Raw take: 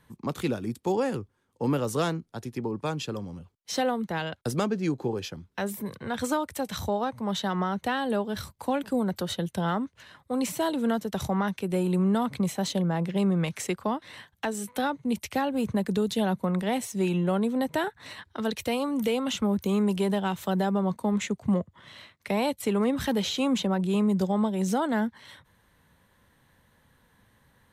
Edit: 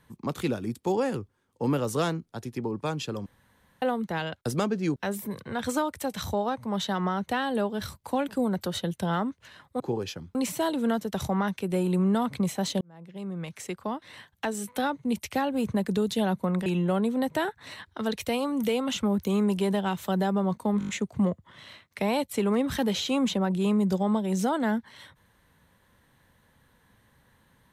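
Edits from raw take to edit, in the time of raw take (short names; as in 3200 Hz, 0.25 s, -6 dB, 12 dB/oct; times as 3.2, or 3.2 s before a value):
3.26–3.82 room tone
4.96–5.51 move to 10.35
12.81–14.47 fade in
16.66–17.05 cut
21.18 stutter 0.02 s, 6 plays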